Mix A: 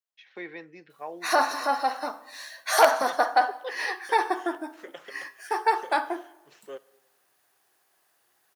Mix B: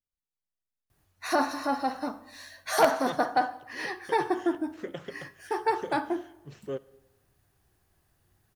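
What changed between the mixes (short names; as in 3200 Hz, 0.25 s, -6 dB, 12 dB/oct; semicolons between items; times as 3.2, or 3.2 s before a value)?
first voice: muted; background -5.5 dB; master: remove HPF 590 Hz 12 dB/oct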